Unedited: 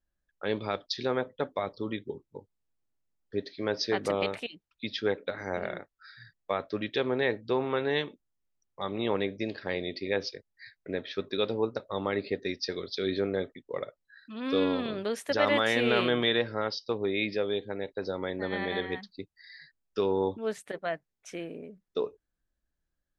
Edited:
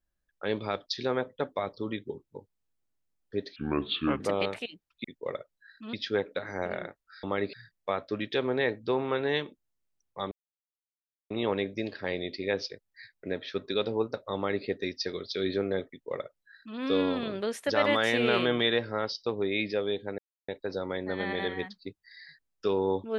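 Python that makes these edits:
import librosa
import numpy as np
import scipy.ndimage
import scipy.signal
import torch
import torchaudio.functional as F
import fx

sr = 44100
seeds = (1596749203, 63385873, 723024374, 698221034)

y = fx.edit(x, sr, fx.speed_span(start_s=3.56, length_s=0.45, speed=0.7),
    fx.insert_silence(at_s=8.93, length_s=0.99),
    fx.duplicate(start_s=11.98, length_s=0.3, to_s=6.15),
    fx.duplicate(start_s=13.52, length_s=0.89, to_s=4.85),
    fx.insert_silence(at_s=17.81, length_s=0.3), tone=tone)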